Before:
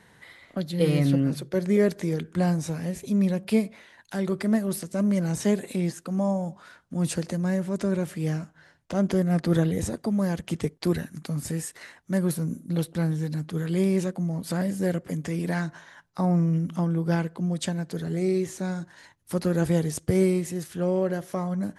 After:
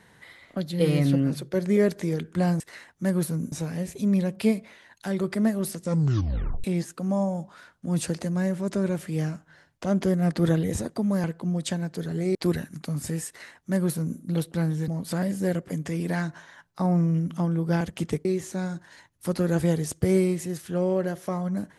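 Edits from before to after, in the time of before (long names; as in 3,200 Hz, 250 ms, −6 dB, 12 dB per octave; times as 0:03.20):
0:04.89: tape stop 0.83 s
0:10.32–0:10.76: swap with 0:17.20–0:18.31
0:11.68–0:12.60: duplicate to 0:02.60
0:13.29–0:14.27: remove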